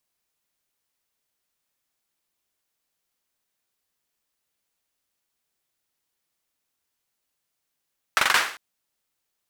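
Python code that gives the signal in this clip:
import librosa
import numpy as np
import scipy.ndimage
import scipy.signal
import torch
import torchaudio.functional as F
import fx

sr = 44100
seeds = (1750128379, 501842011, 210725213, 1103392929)

y = fx.drum_clap(sr, seeds[0], length_s=0.4, bursts=5, spacing_ms=43, hz=1500.0, decay_s=0.48)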